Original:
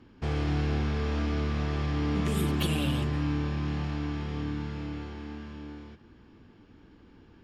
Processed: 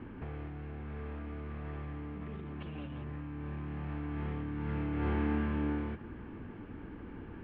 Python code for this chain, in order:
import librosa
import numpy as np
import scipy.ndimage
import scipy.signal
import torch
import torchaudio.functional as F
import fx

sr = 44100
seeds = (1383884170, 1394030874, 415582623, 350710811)

y = scipy.signal.sosfilt(scipy.signal.butter(4, 2400.0, 'lowpass', fs=sr, output='sos'), x)
y = fx.over_compress(y, sr, threshold_db=-39.0, ratio=-1.0)
y = F.gain(torch.from_numpy(y), 1.0).numpy()